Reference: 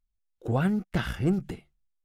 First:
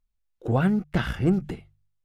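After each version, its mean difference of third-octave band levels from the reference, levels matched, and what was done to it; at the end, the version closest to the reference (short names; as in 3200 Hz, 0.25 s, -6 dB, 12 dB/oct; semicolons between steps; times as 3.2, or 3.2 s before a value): 1.5 dB: high shelf 5300 Hz -7 dB; de-hum 49.61 Hz, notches 3; gain +3.5 dB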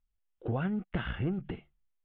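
4.5 dB: elliptic low-pass 3200 Hz, stop band 60 dB; compressor, threshold -28 dBFS, peak gain reduction 8 dB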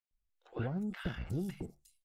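9.5 dB: compressor, threshold -30 dBFS, peak gain reduction 10.5 dB; three bands offset in time mids, lows, highs 0.11/0.36 s, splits 1000/5100 Hz; gain -3 dB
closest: first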